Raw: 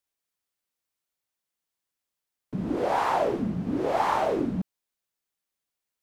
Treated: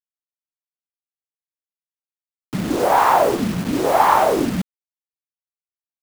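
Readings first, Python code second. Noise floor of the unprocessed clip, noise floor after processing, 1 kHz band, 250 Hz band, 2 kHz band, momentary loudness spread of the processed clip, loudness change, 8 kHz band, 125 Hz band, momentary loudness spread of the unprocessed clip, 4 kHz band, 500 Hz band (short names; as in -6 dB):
under -85 dBFS, under -85 dBFS, +10.5 dB, +7.0 dB, +10.0 dB, 13 LU, +9.5 dB, +17.0 dB, +6.5 dB, 10 LU, +11.0 dB, +8.5 dB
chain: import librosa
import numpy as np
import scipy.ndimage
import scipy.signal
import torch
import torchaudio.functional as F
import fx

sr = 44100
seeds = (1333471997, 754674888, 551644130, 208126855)

y = fx.dynamic_eq(x, sr, hz=1100.0, q=0.82, threshold_db=-36.0, ratio=4.0, max_db=5)
y = fx.quant_dither(y, sr, seeds[0], bits=6, dither='none')
y = y * 10.0 ** (6.5 / 20.0)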